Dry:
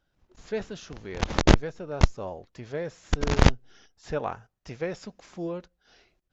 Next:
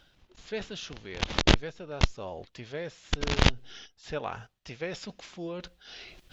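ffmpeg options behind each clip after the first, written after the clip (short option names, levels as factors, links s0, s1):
-af "equalizer=f=3300:t=o:w=1.4:g=10.5,areverse,acompressor=mode=upward:threshold=0.0355:ratio=2.5,areverse,volume=0.562"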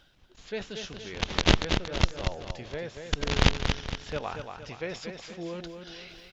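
-af "aecho=1:1:233|466|699|932|1165:0.473|0.213|0.0958|0.0431|0.0194"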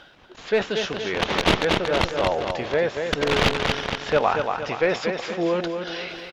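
-filter_complex "[0:a]asplit=2[s0][s1];[s1]highpass=f=720:p=1,volume=22.4,asoftclip=type=tanh:threshold=0.891[s2];[s0][s2]amix=inputs=2:normalize=0,lowpass=f=1100:p=1,volume=0.501,aecho=1:1:373|746|1119|1492:0.0708|0.0389|0.0214|0.0118"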